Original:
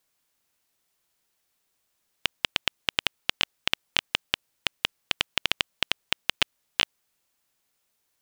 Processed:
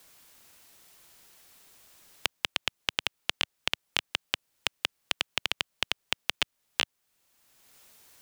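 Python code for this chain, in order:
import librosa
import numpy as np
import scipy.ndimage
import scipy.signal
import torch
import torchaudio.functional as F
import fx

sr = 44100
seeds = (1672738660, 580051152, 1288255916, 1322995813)

y = fx.band_squash(x, sr, depth_pct=70)
y = y * librosa.db_to_amplitude(-3.5)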